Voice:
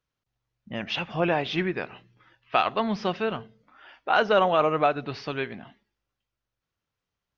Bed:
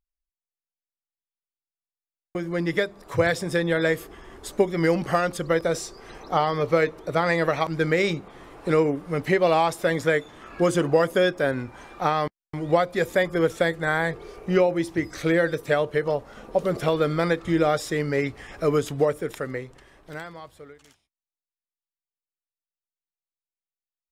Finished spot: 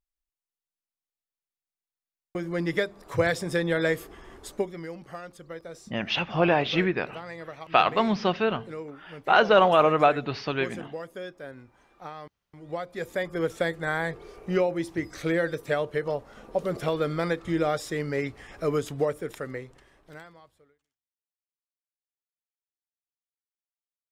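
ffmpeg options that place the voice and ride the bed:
-filter_complex "[0:a]adelay=5200,volume=1.33[s0];[1:a]volume=3.35,afade=t=out:st=4.31:d=0.54:silence=0.177828,afade=t=in:st=12.56:d=1.07:silence=0.223872,afade=t=out:st=19.7:d=1.17:silence=0.0354813[s1];[s0][s1]amix=inputs=2:normalize=0"

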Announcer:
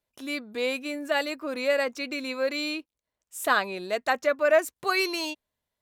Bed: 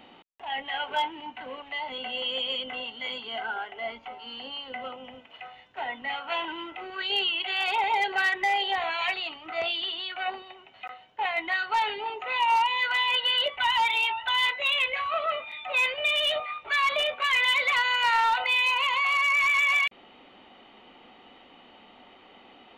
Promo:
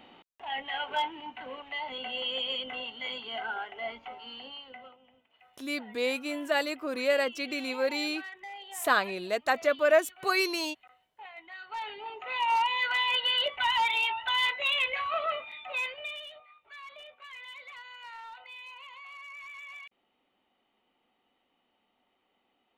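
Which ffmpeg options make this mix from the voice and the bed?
-filter_complex "[0:a]adelay=5400,volume=0.841[s0];[1:a]volume=4.73,afade=t=out:st=4.17:d=0.81:silence=0.158489,afade=t=in:st=11.53:d=1.16:silence=0.158489,afade=t=out:st=15.26:d=1.05:silence=0.1[s1];[s0][s1]amix=inputs=2:normalize=0"

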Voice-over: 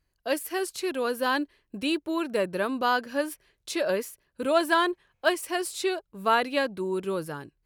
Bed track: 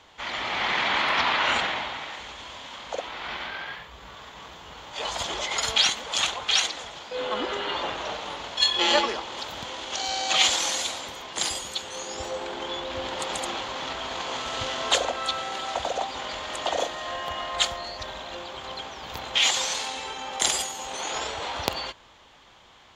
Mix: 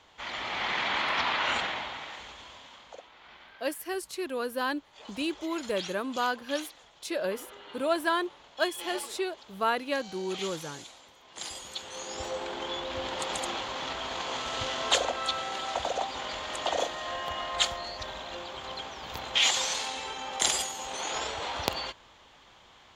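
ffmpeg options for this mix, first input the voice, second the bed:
-filter_complex "[0:a]adelay=3350,volume=0.596[s0];[1:a]volume=3.55,afade=t=out:st=2.2:d=0.88:silence=0.211349,afade=t=in:st=11.21:d=1.04:silence=0.158489[s1];[s0][s1]amix=inputs=2:normalize=0"

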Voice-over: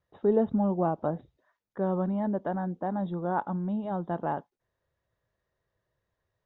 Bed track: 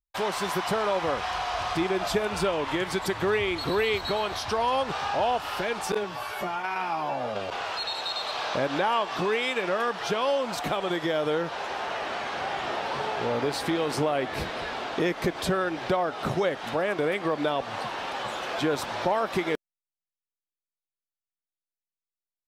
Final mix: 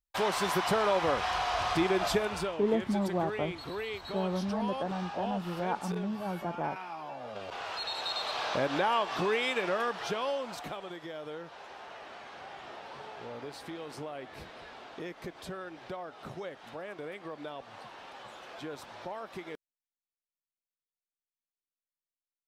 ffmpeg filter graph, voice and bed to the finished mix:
-filter_complex "[0:a]adelay=2350,volume=0.631[s0];[1:a]volume=2.51,afade=t=out:st=2.05:d=0.53:silence=0.281838,afade=t=in:st=7.21:d=0.92:silence=0.354813,afade=t=out:st=9.58:d=1.36:silence=0.251189[s1];[s0][s1]amix=inputs=2:normalize=0"

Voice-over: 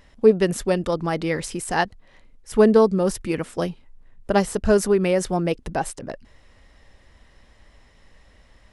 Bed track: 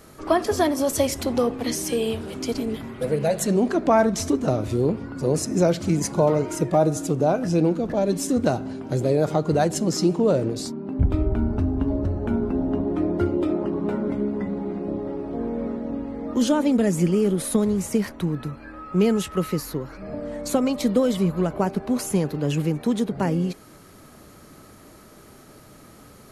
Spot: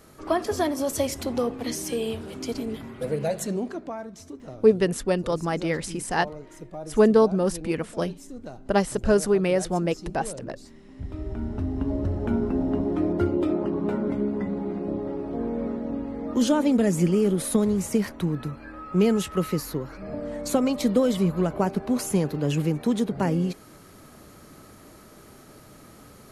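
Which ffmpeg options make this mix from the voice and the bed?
-filter_complex "[0:a]adelay=4400,volume=0.75[s0];[1:a]volume=4.73,afade=t=out:st=3.24:d=0.72:silence=0.188365,afade=t=in:st=10.96:d=1.26:silence=0.133352[s1];[s0][s1]amix=inputs=2:normalize=0"

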